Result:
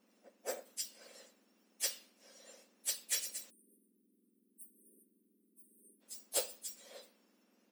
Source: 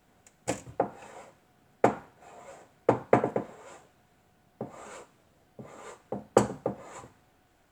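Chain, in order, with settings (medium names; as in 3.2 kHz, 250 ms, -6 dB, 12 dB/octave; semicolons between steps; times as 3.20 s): spectrum inverted on a logarithmic axis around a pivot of 2 kHz; spectral selection erased 3.50–6.02 s, 420–8400 Hz; harmony voices +4 st -10 dB; trim -6 dB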